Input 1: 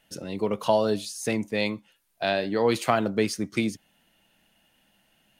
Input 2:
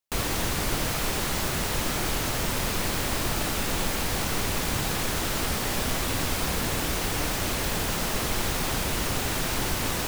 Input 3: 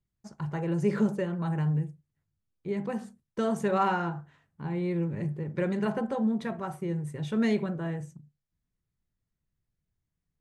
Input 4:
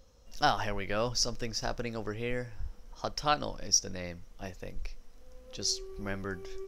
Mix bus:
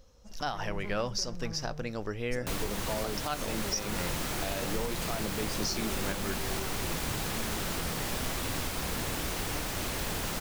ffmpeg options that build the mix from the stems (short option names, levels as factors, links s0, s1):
-filter_complex "[0:a]alimiter=limit=0.15:level=0:latency=1,adelay=2200,volume=0.422[s0];[1:a]adelay=2350,volume=0.501[s1];[2:a]volume=39.8,asoftclip=hard,volume=0.0251,volume=0.376[s2];[3:a]volume=1.12[s3];[s0][s1][s2][s3]amix=inputs=4:normalize=0,alimiter=limit=0.0891:level=0:latency=1:release=239"